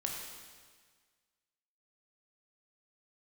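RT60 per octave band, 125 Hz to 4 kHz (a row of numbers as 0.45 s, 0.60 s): 1.7 s, 1.6 s, 1.6 s, 1.6 s, 1.6 s, 1.6 s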